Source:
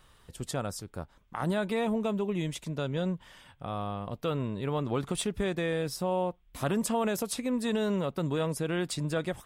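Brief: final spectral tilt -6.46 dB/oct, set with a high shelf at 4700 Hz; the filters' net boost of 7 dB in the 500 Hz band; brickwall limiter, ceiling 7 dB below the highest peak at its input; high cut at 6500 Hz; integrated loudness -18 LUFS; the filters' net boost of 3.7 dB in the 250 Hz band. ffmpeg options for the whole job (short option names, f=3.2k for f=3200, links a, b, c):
-af "lowpass=6.5k,equalizer=f=250:t=o:g=3,equalizer=f=500:t=o:g=7.5,highshelf=f=4.7k:g=-3.5,volume=11.5dB,alimiter=limit=-8dB:level=0:latency=1"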